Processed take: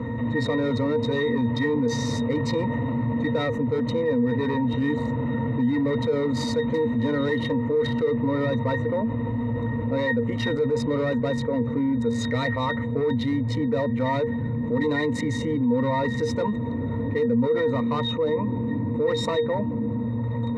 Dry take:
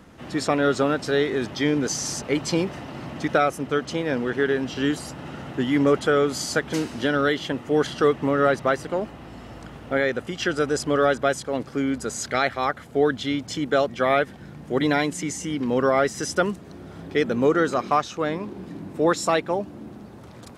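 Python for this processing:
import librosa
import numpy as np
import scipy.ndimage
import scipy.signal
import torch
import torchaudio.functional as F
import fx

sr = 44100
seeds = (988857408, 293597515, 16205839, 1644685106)

y = fx.wiener(x, sr, points=9)
y = fx.high_shelf(y, sr, hz=3500.0, db=10.5)
y = np.clip(y, -10.0 ** (-20.0 / 20.0), 10.0 ** (-20.0 / 20.0))
y = fx.octave_resonator(y, sr, note='A#', decay_s=0.14)
y = fx.env_flatten(y, sr, amount_pct=70)
y = F.gain(torch.from_numpy(y), 6.0).numpy()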